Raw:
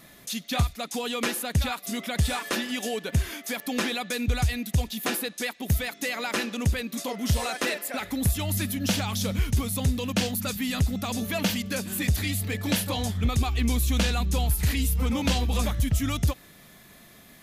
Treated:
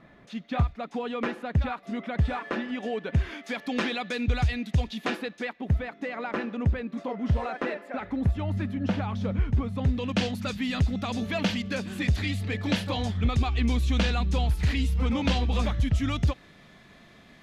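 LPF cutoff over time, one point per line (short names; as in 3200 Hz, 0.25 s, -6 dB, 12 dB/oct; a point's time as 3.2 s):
2.76 s 1700 Hz
3.62 s 3600 Hz
4.98 s 3600 Hz
5.75 s 1500 Hz
9.71 s 1500 Hz
10.18 s 3900 Hz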